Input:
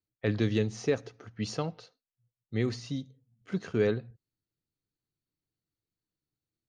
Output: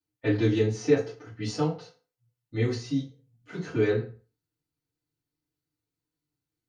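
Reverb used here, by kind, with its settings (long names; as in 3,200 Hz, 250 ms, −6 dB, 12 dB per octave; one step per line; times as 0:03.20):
feedback delay network reverb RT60 0.37 s, low-frequency decay 0.9×, high-frequency decay 0.75×, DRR −9.5 dB
level −7 dB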